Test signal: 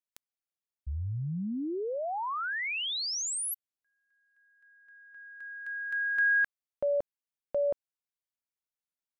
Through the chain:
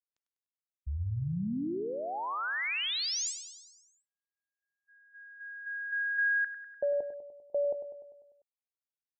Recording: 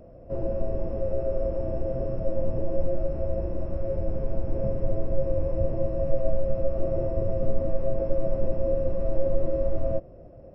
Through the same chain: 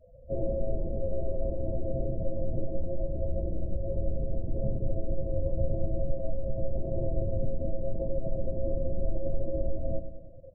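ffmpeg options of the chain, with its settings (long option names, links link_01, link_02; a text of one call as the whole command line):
ffmpeg -i in.wav -af "afftdn=noise_reduction=29:noise_floor=-36,adynamicequalizer=threshold=0.00794:dfrequency=580:dqfactor=0.87:tfrequency=580:tqfactor=0.87:attack=5:release=100:ratio=0.333:range=2.5:mode=cutabove:tftype=bell,acompressor=threshold=-25dB:ratio=2.5:attack=20:release=45:knee=6,aecho=1:1:99|198|297|396|495|594|693:0.316|0.187|0.11|0.0649|0.0383|0.0226|0.0133,aresample=16000,aresample=44100" out.wav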